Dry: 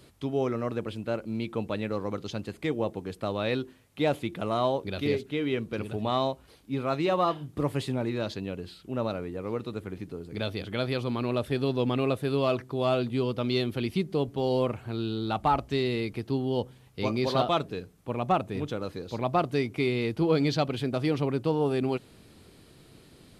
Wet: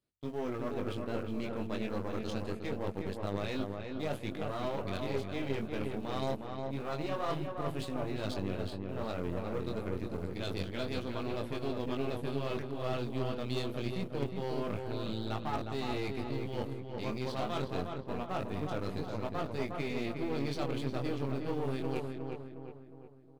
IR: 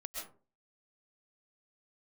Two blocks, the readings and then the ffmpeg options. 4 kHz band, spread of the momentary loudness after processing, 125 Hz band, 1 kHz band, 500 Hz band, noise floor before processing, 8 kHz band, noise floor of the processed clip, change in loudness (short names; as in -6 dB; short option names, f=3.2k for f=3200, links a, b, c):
-7.5 dB, 3 LU, -6.0 dB, -9.0 dB, -8.0 dB, -55 dBFS, n/a, -46 dBFS, -7.5 dB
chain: -filter_complex "[0:a]agate=range=-29dB:threshold=-44dB:ratio=16:detection=peak,areverse,acompressor=threshold=-34dB:ratio=6,areverse,flanger=delay=19:depth=3.9:speed=0.26,aeval=exprs='0.0447*(cos(1*acos(clip(val(0)/0.0447,-1,1)))-cos(1*PI/2))+0.00501*(cos(6*acos(clip(val(0)/0.0447,-1,1)))-cos(6*PI/2))':c=same,asplit=2[a][b];[b]aeval=exprs='val(0)*gte(abs(val(0)),0.00631)':c=same,volume=-9.5dB[c];[a][c]amix=inputs=2:normalize=0,asplit=2[d][e];[e]adelay=360,lowpass=f=2k:p=1,volume=-4dB,asplit=2[f][g];[g]adelay=360,lowpass=f=2k:p=1,volume=0.5,asplit=2[h][i];[i]adelay=360,lowpass=f=2k:p=1,volume=0.5,asplit=2[j][k];[k]adelay=360,lowpass=f=2k:p=1,volume=0.5,asplit=2[l][m];[m]adelay=360,lowpass=f=2k:p=1,volume=0.5,asplit=2[n][o];[o]adelay=360,lowpass=f=2k:p=1,volume=0.5[p];[d][f][h][j][l][n][p]amix=inputs=7:normalize=0"